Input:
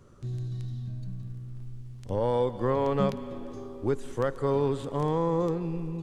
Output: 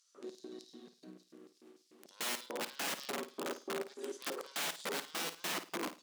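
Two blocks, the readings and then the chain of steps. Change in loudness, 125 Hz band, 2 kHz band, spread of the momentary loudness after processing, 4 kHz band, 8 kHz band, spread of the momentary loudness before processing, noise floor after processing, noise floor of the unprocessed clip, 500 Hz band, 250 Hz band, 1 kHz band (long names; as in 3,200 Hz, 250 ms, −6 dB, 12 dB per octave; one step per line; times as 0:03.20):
−9.5 dB, −30.5 dB, +4.5 dB, 18 LU, +8.0 dB, can't be measured, 14 LU, −73 dBFS, −43 dBFS, −15.5 dB, −15.5 dB, −10.5 dB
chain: bass and treble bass −9 dB, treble −4 dB
in parallel at −1 dB: downward compressor 8 to 1, threshold −37 dBFS, peak gain reduction 14.5 dB
on the sum: harmonic generator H 4 −11 dB, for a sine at −13.5 dBFS
auto-filter high-pass square 3.4 Hz 340–5,000 Hz
wrap-around overflow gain 27 dB
linear-phase brick-wall high-pass 160 Hz
on a send: flutter between parallel walls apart 9.2 metres, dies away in 0.28 s
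on the sum: level −5 dB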